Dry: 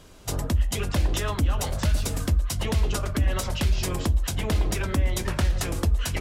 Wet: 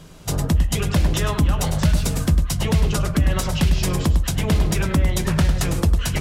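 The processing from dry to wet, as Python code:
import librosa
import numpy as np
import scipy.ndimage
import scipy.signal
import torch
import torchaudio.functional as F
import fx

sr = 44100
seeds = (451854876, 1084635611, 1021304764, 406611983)

p1 = fx.peak_eq(x, sr, hz=160.0, db=13.0, octaves=0.34)
p2 = p1 + fx.echo_single(p1, sr, ms=102, db=-10.0, dry=0)
y = p2 * librosa.db_to_amplitude(4.0)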